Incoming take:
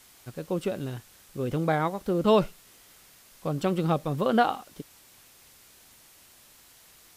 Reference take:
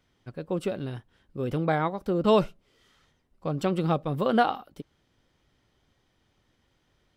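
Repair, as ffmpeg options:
-af "afwtdn=0.002"

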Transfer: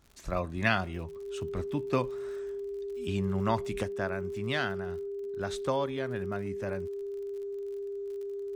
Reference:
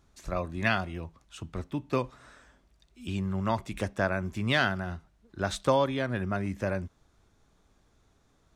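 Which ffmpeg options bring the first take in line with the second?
-af "adeclick=t=4,bandreject=f=400:w=30,asetnsamples=n=441:p=0,asendcmd='3.83 volume volume 6dB',volume=1"

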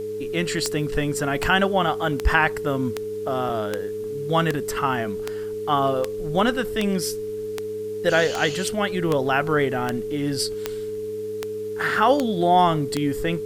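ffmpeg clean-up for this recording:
-af "adeclick=t=4,bandreject=f=102.7:t=h:w=4,bandreject=f=205.4:t=h:w=4,bandreject=f=308.1:t=h:w=4,bandreject=f=410.8:t=h:w=4,bandreject=f=430:w=30,agate=range=0.0891:threshold=0.0794"

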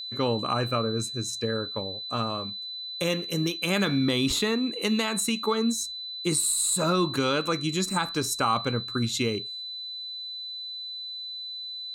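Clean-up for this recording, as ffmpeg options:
-af "bandreject=f=4000:w=30"

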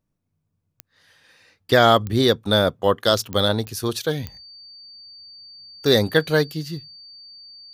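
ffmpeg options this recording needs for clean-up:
-af "adeclick=t=4,bandreject=f=4600:w=30"

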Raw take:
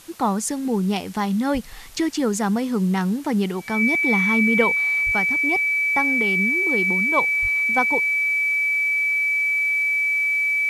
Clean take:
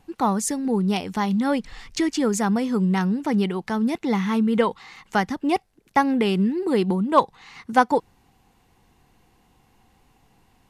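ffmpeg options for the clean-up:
-filter_complex "[0:a]bandreject=f=2300:w=30,asplit=3[s0][s1][s2];[s0]afade=t=out:st=1.53:d=0.02[s3];[s1]highpass=f=140:w=0.5412,highpass=f=140:w=1.3066,afade=t=in:st=1.53:d=0.02,afade=t=out:st=1.65:d=0.02[s4];[s2]afade=t=in:st=1.65:d=0.02[s5];[s3][s4][s5]amix=inputs=3:normalize=0,asplit=3[s6][s7][s8];[s6]afade=t=out:st=5.05:d=0.02[s9];[s7]highpass=f=140:w=0.5412,highpass=f=140:w=1.3066,afade=t=in:st=5.05:d=0.02,afade=t=out:st=5.17:d=0.02[s10];[s8]afade=t=in:st=5.17:d=0.02[s11];[s9][s10][s11]amix=inputs=3:normalize=0,asplit=3[s12][s13][s14];[s12]afade=t=out:st=7.41:d=0.02[s15];[s13]highpass=f=140:w=0.5412,highpass=f=140:w=1.3066,afade=t=in:st=7.41:d=0.02,afade=t=out:st=7.53:d=0.02[s16];[s14]afade=t=in:st=7.53:d=0.02[s17];[s15][s16][s17]amix=inputs=3:normalize=0,afwtdn=0.005,asetnsamples=n=441:p=0,asendcmd='5.12 volume volume 5.5dB',volume=1"

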